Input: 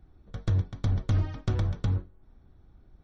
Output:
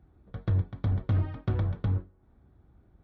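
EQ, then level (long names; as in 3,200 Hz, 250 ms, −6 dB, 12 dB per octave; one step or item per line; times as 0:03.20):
Gaussian smoothing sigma 2.6 samples
high-pass filter 54 Hz
0.0 dB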